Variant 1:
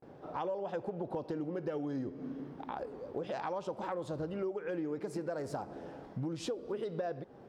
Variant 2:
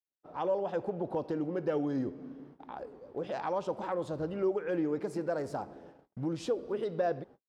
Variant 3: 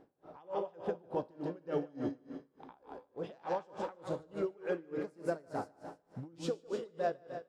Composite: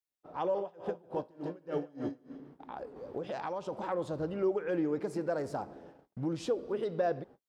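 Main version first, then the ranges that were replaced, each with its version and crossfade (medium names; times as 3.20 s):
2
0.59–2.35 s: from 3, crossfade 0.24 s
2.96–3.72 s: from 1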